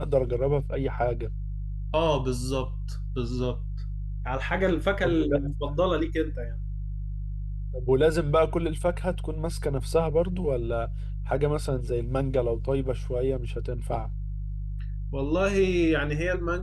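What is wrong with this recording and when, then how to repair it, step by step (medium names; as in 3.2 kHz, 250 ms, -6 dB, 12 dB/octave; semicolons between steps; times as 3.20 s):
hum 50 Hz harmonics 3 -32 dBFS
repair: de-hum 50 Hz, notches 3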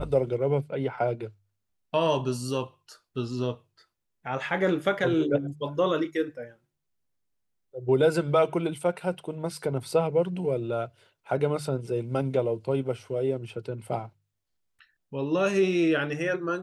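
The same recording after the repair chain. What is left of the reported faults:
nothing left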